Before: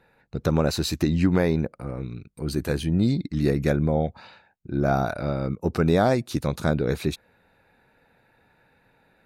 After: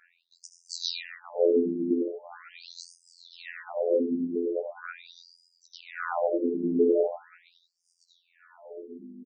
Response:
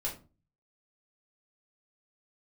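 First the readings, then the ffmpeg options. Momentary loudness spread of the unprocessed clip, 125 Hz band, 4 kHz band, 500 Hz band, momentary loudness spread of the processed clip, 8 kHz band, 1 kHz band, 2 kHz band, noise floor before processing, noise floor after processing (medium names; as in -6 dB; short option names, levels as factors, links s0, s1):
11 LU, -26.5 dB, -3.5 dB, -1.0 dB, 21 LU, no reading, -8.5 dB, -7.0 dB, -63 dBFS, -72 dBFS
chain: -filter_complex "[0:a]asplit=2[s0][s1];[s1]adynamicequalizer=threshold=0.01:dfrequency=1800:dqfactor=0.86:tfrequency=1800:tqfactor=0.86:attack=5:release=100:ratio=0.375:range=2.5:mode=boostabove:tftype=bell[s2];[1:a]atrim=start_sample=2205,asetrate=29547,aresample=44100,adelay=71[s3];[s2][s3]afir=irnorm=-1:irlink=0,volume=0.335[s4];[s0][s4]amix=inputs=2:normalize=0,acompressor=threshold=0.0794:ratio=6,asplit=2[s5][s6];[s6]adelay=15,volume=0.251[s7];[s5][s7]amix=inputs=2:normalize=0,afftfilt=real='hypot(re,im)*cos(PI*b)':imag='0':win_size=2048:overlap=0.75,aeval=exprs='val(0)+0.00891*(sin(2*PI*50*n/s)+sin(2*PI*2*50*n/s)/2+sin(2*PI*3*50*n/s)/3+sin(2*PI*4*50*n/s)/4+sin(2*PI*5*50*n/s)/5)':c=same,tiltshelf=f=1200:g=3.5,asplit=2[s8][s9];[s9]adelay=887,lowpass=f=810:p=1,volume=0.562,asplit=2[s10][s11];[s11]adelay=887,lowpass=f=810:p=1,volume=0.33,asplit=2[s12][s13];[s13]adelay=887,lowpass=f=810:p=1,volume=0.33,asplit=2[s14][s15];[s15]adelay=887,lowpass=f=810:p=1,volume=0.33[s16];[s8][s10][s12][s14][s16]amix=inputs=5:normalize=0,asoftclip=type=hard:threshold=0.251,afftfilt=real='re*between(b*sr/1024,280*pow(6900/280,0.5+0.5*sin(2*PI*0.41*pts/sr))/1.41,280*pow(6900/280,0.5+0.5*sin(2*PI*0.41*pts/sr))*1.41)':imag='im*between(b*sr/1024,280*pow(6900/280,0.5+0.5*sin(2*PI*0.41*pts/sr))/1.41,280*pow(6900/280,0.5+0.5*sin(2*PI*0.41*pts/sr))*1.41)':win_size=1024:overlap=0.75,volume=2.51"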